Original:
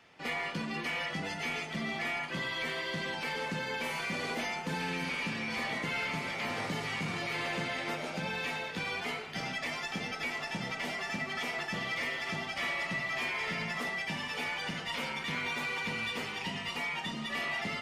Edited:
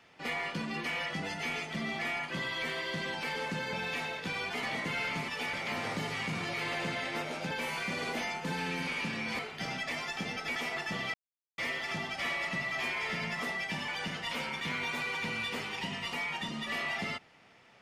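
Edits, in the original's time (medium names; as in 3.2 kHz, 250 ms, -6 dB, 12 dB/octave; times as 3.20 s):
3.73–5.61 s: swap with 8.24–9.14 s
10.31–11.38 s: delete
11.96 s: insert silence 0.44 s
14.26–14.51 s: move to 6.26 s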